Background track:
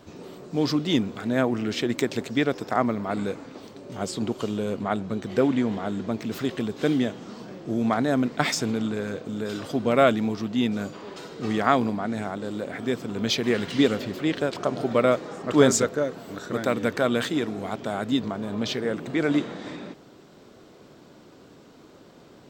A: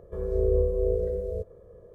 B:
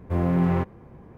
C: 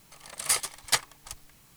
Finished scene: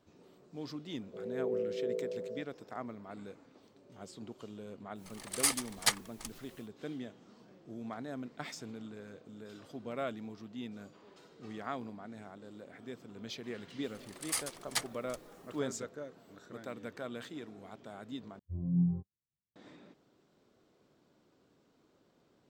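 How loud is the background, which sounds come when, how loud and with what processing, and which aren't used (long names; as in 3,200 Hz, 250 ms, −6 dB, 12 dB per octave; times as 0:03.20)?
background track −19 dB
0:01.01: mix in A −9 dB + brick-wall band-pass 130–840 Hz
0:04.94: mix in C −4 dB, fades 0.10 s
0:13.83: mix in C −9.5 dB
0:18.39: overwrite with B −9 dB + every bin expanded away from the loudest bin 2.5 to 1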